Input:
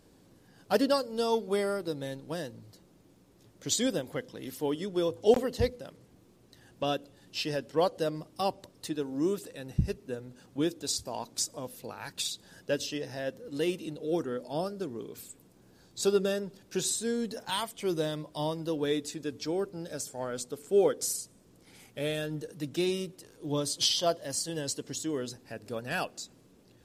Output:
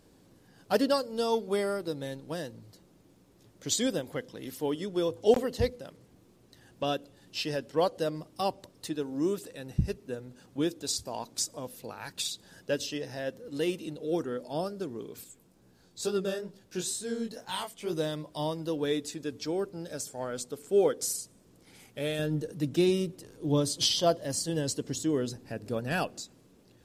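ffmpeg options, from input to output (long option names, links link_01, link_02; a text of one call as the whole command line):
ffmpeg -i in.wav -filter_complex "[0:a]asettb=1/sr,asplit=3[link_01][link_02][link_03];[link_01]atrim=end=15.244[link_04];[link_02]atrim=start=15.24:end=17.93,asetpts=PTS-STARTPTS,afade=type=in:duration=0.004:curve=qsin,afade=type=out:start_time=2.686:duration=0.004:curve=qsin,flanger=delay=15.5:depth=7.2:speed=2.2[link_05];[link_03]atrim=start=17.926[link_06];[link_04][link_05]acrossfade=duration=0.004:curve1=hsin:curve2=qsin[link_07];[link_07][link_06]acrossfade=duration=0.004:curve1=qsin:curve2=hsin,asettb=1/sr,asplit=3[link_08][link_09][link_10];[link_08]atrim=end=22.194[link_11];[link_09]atrim=start=22.19:end=26.22,asetpts=PTS-STARTPTS,afade=type=in:duration=0.004:curve=qsin,afade=type=out:start_time=4.026:duration=0.004:curve=qsin,lowshelf=frequency=470:gain=7.5[link_12];[link_10]atrim=start=26.216[link_13];[link_11][link_12]acrossfade=duration=0.004:curve1=hsin:curve2=qsin[link_14];[link_14][link_13]acrossfade=duration=0.004:curve1=qsin:curve2=hsin" out.wav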